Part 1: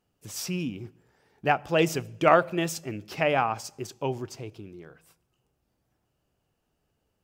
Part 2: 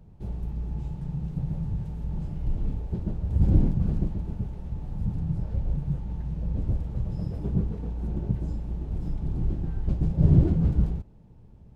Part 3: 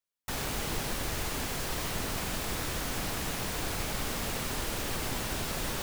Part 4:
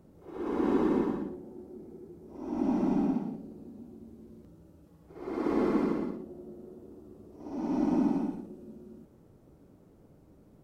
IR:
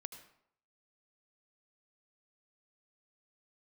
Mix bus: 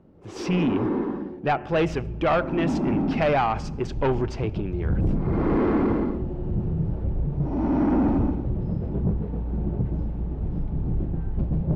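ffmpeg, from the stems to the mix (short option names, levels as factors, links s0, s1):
-filter_complex "[0:a]dynaudnorm=f=110:g=7:m=4.47,volume=0.708,asplit=2[s0][s1];[s1]volume=0.188[s2];[1:a]equalizer=f=380:w=0.3:g=4.5,adelay=1500,volume=0.531[s3];[3:a]volume=1.41[s4];[4:a]atrim=start_sample=2205[s5];[s2][s5]afir=irnorm=-1:irlink=0[s6];[s0][s3][s4][s6]amix=inputs=4:normalize=0,dynaudnorm=f=120:g=21:m=2.51,asoftclip=type=tanh:threshold=0.15,lowpass=2700"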